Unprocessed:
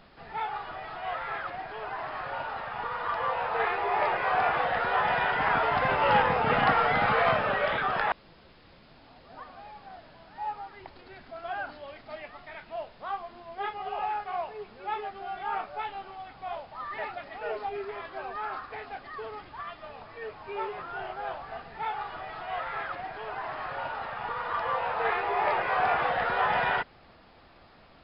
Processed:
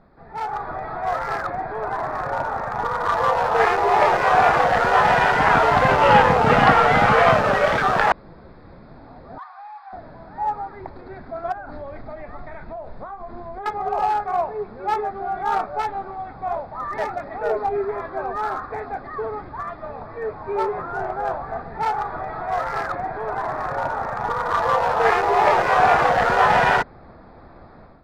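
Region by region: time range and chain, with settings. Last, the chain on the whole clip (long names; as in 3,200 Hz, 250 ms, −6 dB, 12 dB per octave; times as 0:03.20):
0:09.38–0:09.93: Butterworth high-pass 760 Hz 72 dB per octave + saturating transformer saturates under 1,700 Hz
0:11.52–0:13.66: low-shelf EQ 75 Hz +11 dB + downward compressor 20 to 1, threshold −40 dBFS
whole clip: adaptive Wiener filter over 15 samples; low-shelf EQ 470 Hz +3.5 dB; automatic gain control gain up to 10.5 dB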